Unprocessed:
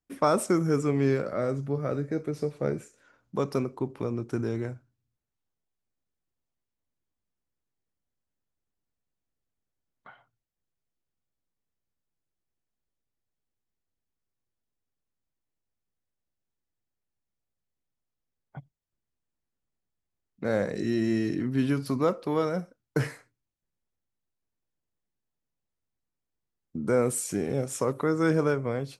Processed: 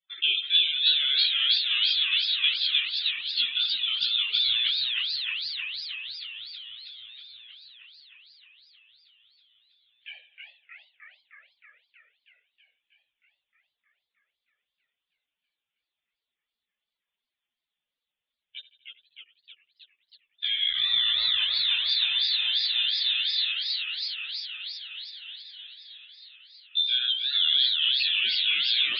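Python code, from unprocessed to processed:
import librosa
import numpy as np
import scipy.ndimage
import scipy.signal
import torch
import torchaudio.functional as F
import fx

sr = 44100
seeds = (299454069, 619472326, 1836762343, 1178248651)

p1 = scipy.signal.sosfilt(scipy.signal.butter(2, 240.0, 'highpass', fs=sr, output='sos'), x)
p2 = fx.over_compress(p1, sr, threshold_db=-34.0, ratio=-1.0)
p3 = p1 + (p2 * librosa.db_to_amplitude(2.0))
p4 = fx.chorus_voices(p3, sr, voices=4, hz=0.43, base_ms=15, depth_ms=2.9, mix_pct=60)
p5 = fx.spec_topn(p4, sr, count=64)
p6 = p5 + fx.echo_feedback(p5, sr, ms=81, feedback_pct=60, wet_db=-18, dry=0)
p7 = fx.freq_invert(p6, sr, carrier_hz=3800)
p8 = fx.spec_freeze(p7, sr, seeds[0], at_s=21.49, hold_s=2.02)
y = fx.echo_warbled(p8, sr, ms=315, feedback_pct=75, rate_hz=2.8, cents=205, wet_db=-3.5)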